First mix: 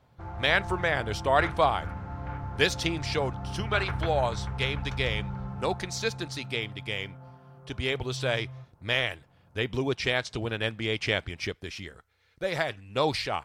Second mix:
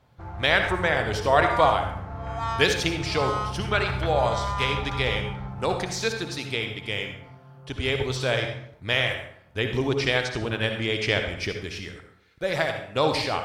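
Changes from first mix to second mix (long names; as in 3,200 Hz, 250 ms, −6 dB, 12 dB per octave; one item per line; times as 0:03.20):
second sound: unmuted
reverb: on, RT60 0.70 s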